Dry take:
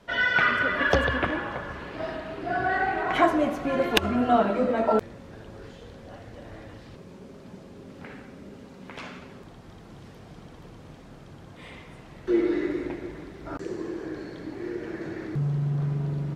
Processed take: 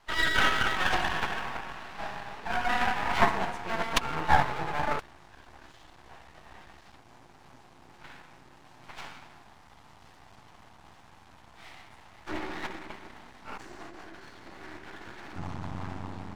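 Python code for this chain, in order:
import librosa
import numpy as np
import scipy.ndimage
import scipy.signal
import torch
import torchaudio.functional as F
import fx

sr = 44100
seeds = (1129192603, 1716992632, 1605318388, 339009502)

y = fx.pitch_keep_formants(x, sr, semitones=-7.5)
y = fx.low_shelf_res(y, sr, hz=640.0, db=-8.0, q=3.0)
y = np.maximum(y, 0.0)
y = y * 10.0 ** (1.5 / 20.0)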